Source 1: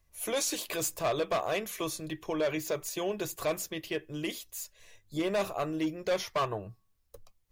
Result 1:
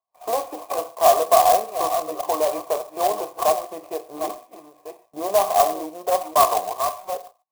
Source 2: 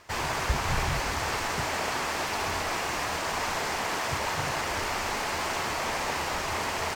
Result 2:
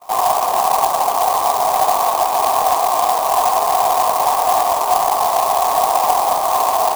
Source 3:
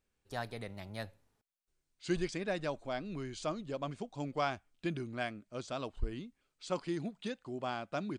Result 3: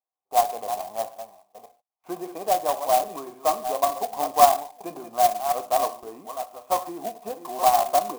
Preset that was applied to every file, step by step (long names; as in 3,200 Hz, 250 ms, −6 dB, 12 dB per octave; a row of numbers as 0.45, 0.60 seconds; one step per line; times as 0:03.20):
delay that plays each chunk backwards 552 ms, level −10 dB
high-pass filter 290 Hz 12 dB per octave
noise gate with hold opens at −44 dBFS
dynamic equaliser 390 Hz, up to +4 dB, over −44 dBFS, Q 0.86
in parallel at +0.5 dB: downward compressor, threshold −38 dBFS
on the sum: formant resonators in series a
reverb whose tail is shaped and stops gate 170 ms falling, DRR 8.5 dB
converter with an unsteady clock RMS 0.056 ms
normalise the peak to −3 dBFS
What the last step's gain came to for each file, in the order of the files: +20.0, +21.5, +20.5 decibels